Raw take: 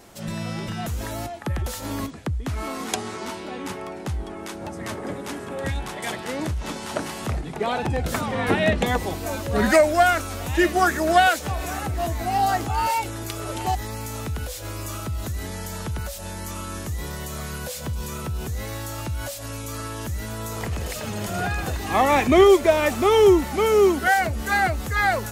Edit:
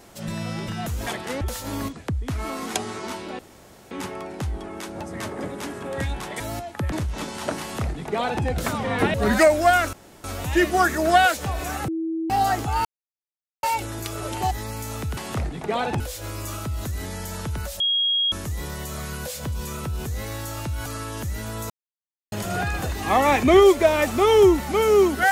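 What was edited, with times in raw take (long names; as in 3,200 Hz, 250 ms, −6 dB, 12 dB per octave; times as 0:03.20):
0:01.07–0:01.59: swap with 0:06.06–0:06.40
0:03.57: splice in room tone 0.52 s
0:07.09–0:07.92: duplicate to 0:14.41
0:08.62–0:09.47: remove
0:10.26: splice in room tone 0.31 s
0:11.90–0:12.32: beep over 325 Hz −23.5 dBFS
0:12.87: splice in silence 0.78 s
0:16.21–0:16.73: beep over 3,280 Hz −18.5 dBFS
0:19.27–0:19.70: remove
0:20.54–0:21.16: silence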